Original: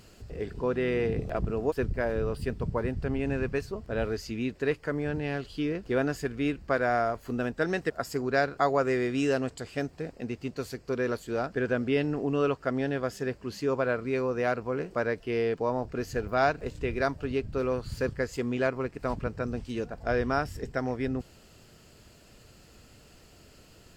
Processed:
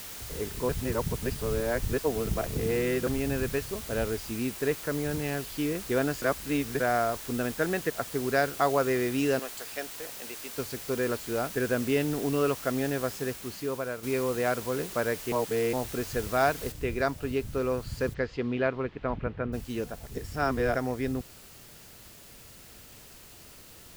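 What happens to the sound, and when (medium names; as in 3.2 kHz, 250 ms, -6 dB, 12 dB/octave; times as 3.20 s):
0.69–3.07 s: reverse
4.06–5.22 s: low-pass 2.9 kHz 6 dB/octave
6.22–6.80 s: reverse
7.40–8.21 s: low-pass 5 kHz -> 2.1 kHz
9.39–10.58 s: high-pass 580 Hz
13.11–14.03 s: fade out, to -8.5 dB
15.32–15.73 s: reverse
16.72 s: noise floor step -42 dB -52 dB
18.13–19.52 s: low-pass 4.8 kHz -> 2.7 kHz 24 dB/octave
20.06–20.75 s: reverse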